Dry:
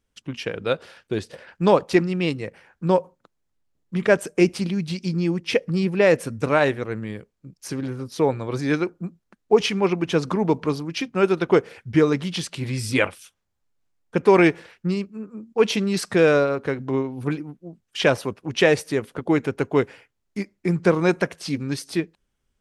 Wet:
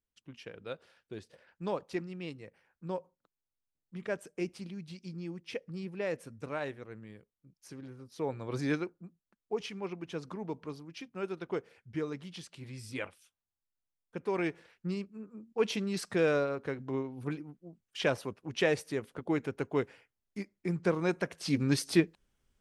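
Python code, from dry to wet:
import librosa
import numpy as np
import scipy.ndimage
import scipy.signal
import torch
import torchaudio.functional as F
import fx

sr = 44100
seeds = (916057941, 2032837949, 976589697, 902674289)

y = fx.gain(x, sr, db=fx.line((8.07, -18.0), (8.64, -7.0), (9.03, -18.0), (14.32, -18.0), (14.94, -11.0), (21.22, -11.0), (21.63, -1.0)))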